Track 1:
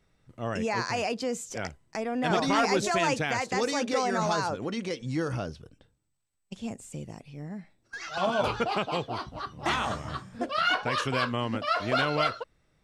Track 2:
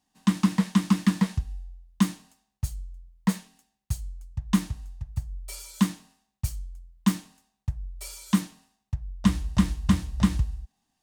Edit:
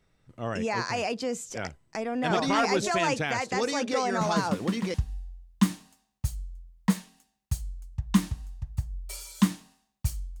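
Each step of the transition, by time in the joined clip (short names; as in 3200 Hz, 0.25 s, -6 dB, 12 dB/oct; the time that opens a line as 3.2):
track 1
4.21 add track 2 from 0.6 s 0.73 s -8 dB
4.94 switch to track 2 from 1.33 s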